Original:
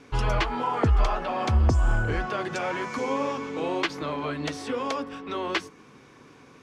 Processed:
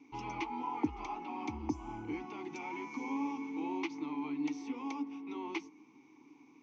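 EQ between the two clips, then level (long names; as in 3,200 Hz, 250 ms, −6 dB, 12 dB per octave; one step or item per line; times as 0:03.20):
formant filter u
low-pass with resonance 6,100 Hz, resonance Q 8.3
+1.0 dB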